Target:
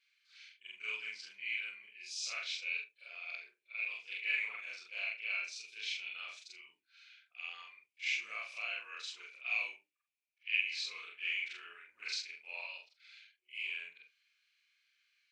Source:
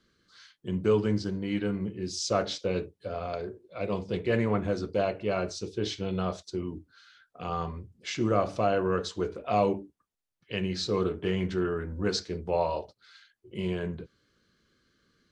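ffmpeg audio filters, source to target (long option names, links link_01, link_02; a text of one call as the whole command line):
ffmpeg -i in.wav -af "afftfilt=real='re':imag='-im':win_size=4096:overlap=0.75,highpass=frequency=2400:width_type=q:width=11,volume=-4dB" out.wav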